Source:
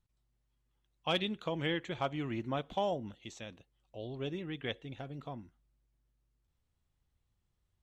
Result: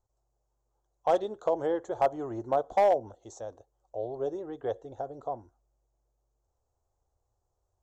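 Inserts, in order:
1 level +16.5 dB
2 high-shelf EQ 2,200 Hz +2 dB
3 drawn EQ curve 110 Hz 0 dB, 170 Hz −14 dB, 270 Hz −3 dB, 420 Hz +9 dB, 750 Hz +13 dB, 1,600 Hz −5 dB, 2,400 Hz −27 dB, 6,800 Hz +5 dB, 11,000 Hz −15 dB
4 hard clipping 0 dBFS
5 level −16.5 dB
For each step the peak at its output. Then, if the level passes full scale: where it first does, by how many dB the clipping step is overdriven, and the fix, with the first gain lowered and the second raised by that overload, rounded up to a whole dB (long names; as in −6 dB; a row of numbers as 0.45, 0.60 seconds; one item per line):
−4.0, −3.0, +6.0, 0.0, −16.5 dBFS
step 3, 6.0 dB
step 1 +10.5 dB, step 5 −10.5 dB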